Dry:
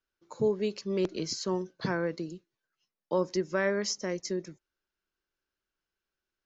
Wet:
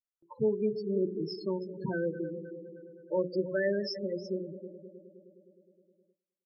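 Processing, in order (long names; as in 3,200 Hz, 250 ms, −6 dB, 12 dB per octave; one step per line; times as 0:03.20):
echo machine with several playback heads 104 ms, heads second and third, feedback 59%, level −12.5 dB
dynamic equaliser 5,200 Hz, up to +4 dB, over −52 dBFS, Q 4.3
repeating echo 102 ms, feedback 54%, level −23.5 dB
spectral peaks only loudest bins 8
low-pass that shuts in the quiet parts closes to 1,700 Hz, open at −24 dBFS
mains-hum notches 60/120/180/240/300/360/420/480/540 Hz
noise gate with hold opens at −60 dBFS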